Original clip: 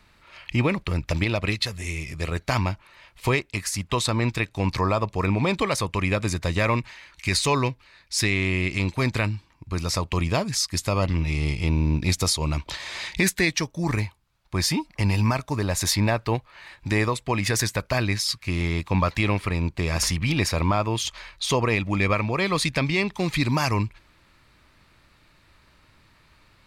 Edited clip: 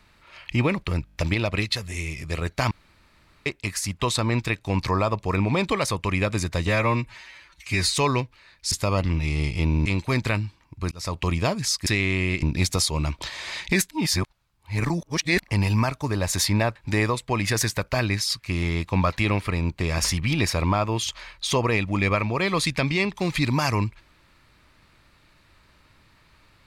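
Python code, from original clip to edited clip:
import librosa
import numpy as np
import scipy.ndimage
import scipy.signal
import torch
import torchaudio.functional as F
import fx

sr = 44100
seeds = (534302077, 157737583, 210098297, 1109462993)

y = fx.edit(x, sr, fx.stutter(start_s=1.05, slice_s=0.02, count=6),
    fx.room_tone_fill(start_s=2.61, length_s=0.75),
    fx.stretch_span(start_s=6.57, length_s=0.85, factor=1.5),
    fx.swap(start_s=8.19, length_s=0.56, other_s=10.76, other_length_s=1.14),
    fx.fade_in_span(start_s=9.81, length_s=0.26),
    fx.reverse_span(start_s=13.38, length_s=1.49),
    fx.cut(start_s=16.23, length_s=0.51), tone=tone)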